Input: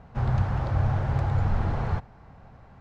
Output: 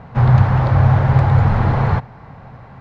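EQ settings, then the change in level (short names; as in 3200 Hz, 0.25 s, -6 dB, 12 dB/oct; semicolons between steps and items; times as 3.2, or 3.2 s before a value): graphic EQ 125/250/500/1000/2000/4000 Hz +11/+5/+6/+8/+8/+6 dB; +3.0 dB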